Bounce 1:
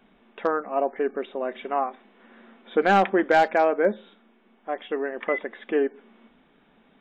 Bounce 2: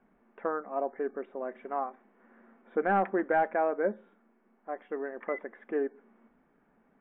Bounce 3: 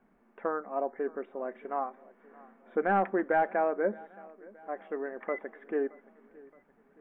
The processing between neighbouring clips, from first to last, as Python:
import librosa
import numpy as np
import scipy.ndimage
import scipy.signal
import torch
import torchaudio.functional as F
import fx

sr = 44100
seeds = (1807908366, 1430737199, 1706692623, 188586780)

y1 = scipy.signal.sosfilt(scipy.signal.butter(4, 1900.0, 'lowpass', fs=sr, output='sos'), x)
y1 = F.gain(torch.from_numpy(y1), -7.5).numpy()
y2 = fx.echo_feedback(y1, sr, ms=621, feedback_pct=53, wet_db=-22.5)